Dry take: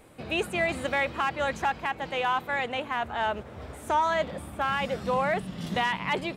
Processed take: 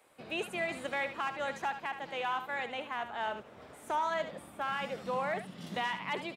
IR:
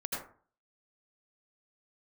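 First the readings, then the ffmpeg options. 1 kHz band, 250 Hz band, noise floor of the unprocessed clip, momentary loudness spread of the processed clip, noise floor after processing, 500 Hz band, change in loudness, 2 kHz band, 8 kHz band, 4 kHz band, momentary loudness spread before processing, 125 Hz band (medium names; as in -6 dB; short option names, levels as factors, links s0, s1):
-7.0 dB, -9.0 dB, -45 dBFS, 5 LU, -54 dBFS, -7.5 dB, -7.5 dB, -7.0 dB, -7.0 dB, -7.0 dB, 5 LU, -12.0 dB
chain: -filter_complex "[0:a]highpass=160,acrossover=split=510[s0][s1];[s0]aeval=exprs='sgn(val(0))*max(abs(val(0))-0.00112,0)':c=same[s2];[s1]aecho=1:1:73:0.335[s3];[s2][s3]amix=inputs=2:normalize=0,volume=0.422"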